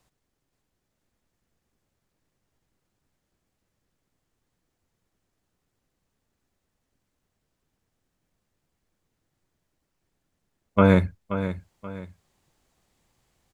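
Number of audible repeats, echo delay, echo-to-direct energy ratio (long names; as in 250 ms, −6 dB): 2, 529 ms, −10.5 dB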